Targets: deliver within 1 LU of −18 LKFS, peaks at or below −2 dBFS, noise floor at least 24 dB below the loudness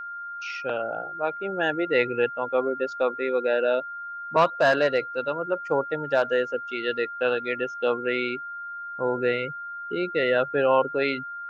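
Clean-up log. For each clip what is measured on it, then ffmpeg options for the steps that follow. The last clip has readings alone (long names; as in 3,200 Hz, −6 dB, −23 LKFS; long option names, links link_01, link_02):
interfering tone 1,400 Hz; level of the tone −33 dBFS; integrated loudness −25.5 LKFS; sample peak −9.0 dBFS; target loudness −18.0 LKFS
→ -af "bandreject=frequency=1400:width=30"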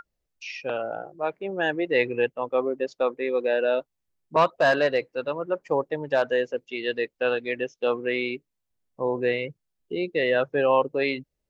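interfering tone none found; integrated loudness −26.0 LKFS; sample peak −9.0 dBFS; target loudness −18.0 LKFS
→ -af "volume=8dB,alimiter=limit=-2dB:level=0:latency=1"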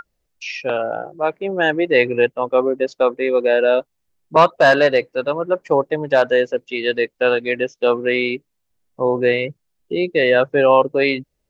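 integrated loudness −18.0 LKFS; sample peak −2.0 dBFS; background noise floor −73 dBFS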